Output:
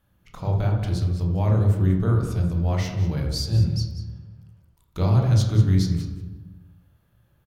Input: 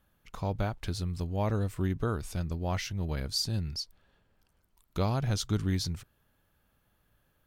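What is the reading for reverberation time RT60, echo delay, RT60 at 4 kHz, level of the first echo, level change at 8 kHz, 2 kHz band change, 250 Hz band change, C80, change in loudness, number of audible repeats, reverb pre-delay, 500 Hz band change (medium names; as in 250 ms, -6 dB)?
1.1 s, 190 ms, 0.75 s, -14.0 dB, +0.5 dB, +2.0 dB, +8.5 dB, 6.0 dB, +10.0 dB, 1, 19 ms, +5.0 dB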